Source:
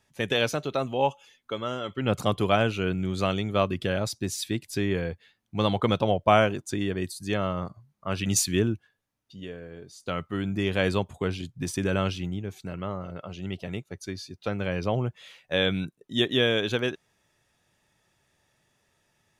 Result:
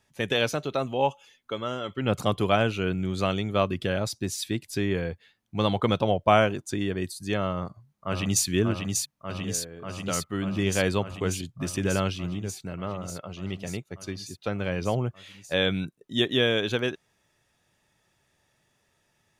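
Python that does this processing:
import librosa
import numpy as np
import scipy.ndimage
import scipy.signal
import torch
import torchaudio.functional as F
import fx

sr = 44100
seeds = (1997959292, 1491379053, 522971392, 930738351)

y = fx.echo_throw(x, sr, start_s=7.52, length_s=0.94, ms=590, feedback_pct=80, wet_db=-4.0)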